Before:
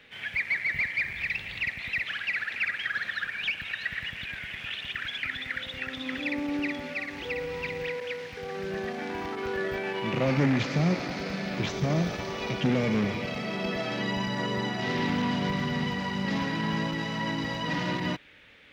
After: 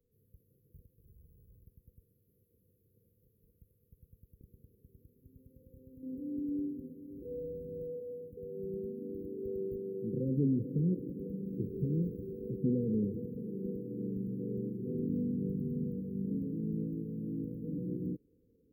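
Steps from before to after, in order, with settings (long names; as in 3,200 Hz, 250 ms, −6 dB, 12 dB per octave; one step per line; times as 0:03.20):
parametric band 270 Hz −14.5 dB 2.1 octaves, from 0:04.41 −6 dB, from 0:06.03 +2.5 dB
linear-phase brick-wall band-stop 520–11,000 Hz
level −7 dB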